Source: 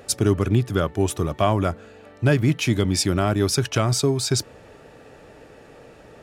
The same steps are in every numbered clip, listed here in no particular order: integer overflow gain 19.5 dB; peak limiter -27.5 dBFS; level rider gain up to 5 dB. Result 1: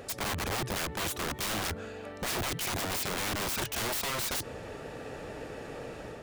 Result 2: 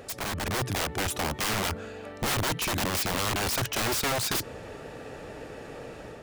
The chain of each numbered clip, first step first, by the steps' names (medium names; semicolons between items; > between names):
level rider > integer overflow > peak limiter; integer overflow > peak limiter > level rider